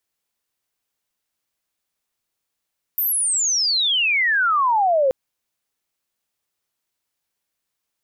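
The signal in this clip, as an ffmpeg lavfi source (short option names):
-f lavfi -i "aevalsrc='pow(10,(-18+4*t/2.13)/20)*sin(2*PI*14000*2.13/log(510/14000)*(exp(log(510/14000)*t/2.13)-1))':d=2.13:s=44100"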